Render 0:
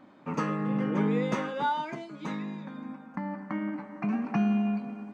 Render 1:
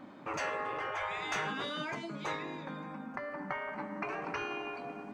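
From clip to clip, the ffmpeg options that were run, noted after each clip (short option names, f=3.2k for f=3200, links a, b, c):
-af "afftfilt=real='re*lt(hypot(re,im),0.0708)':imag='im*lt(hypot(re,im),0.0708)':win_size=1024:overlap=0.75,volume=4dB"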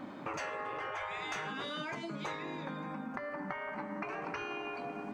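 -af "acompressor=threshold=-43dB:ratio=4,volume=5.5dB"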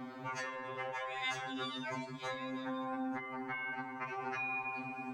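-af "afftfilt=real='re*2.45*eq(mod(b,6),0)':imag='im*2.45*eq(mod(b,6),0)':win_size=2048:overlap=0.75,volume=2dB"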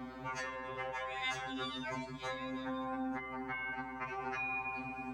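-af "aeval=exprs='val(0)+0.000891*(sin(2*PI*60*n/s)+sin(2*PI*2*60*n/s)/2+sin(2*PI*3*60*n/s)/3+sin(2*PI*4*60*n/s)/4+sin(2*PI*5*60*n/s)/5)':c=same"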